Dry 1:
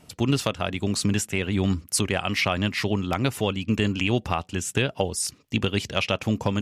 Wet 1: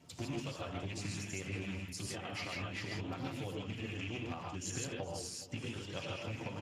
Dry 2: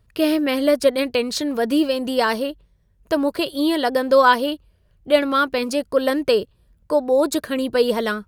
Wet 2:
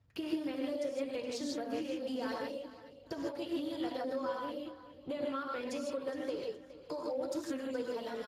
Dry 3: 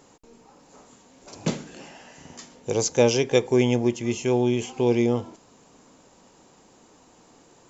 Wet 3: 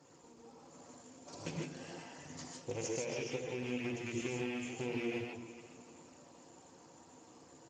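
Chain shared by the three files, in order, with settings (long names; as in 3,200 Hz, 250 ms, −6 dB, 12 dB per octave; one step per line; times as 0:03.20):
loose part that buzzes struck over −24 dBFS, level −13 dBFS
low-shelf EQ 120 Hz +5 dB
mains-hum notches 60/120/180/240/300/360/420 Hz
downward compressor 10 to 1, threshold −31 dBFS
notch comb filter 210 Hz
repeating echo 417 ms, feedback 35%, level −15.5 dB
reverb whose tail is shaped and stops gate 180 ms rising, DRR −1 dB
level −6.5 dB
Speex 15 kbit/s 32,000 Hz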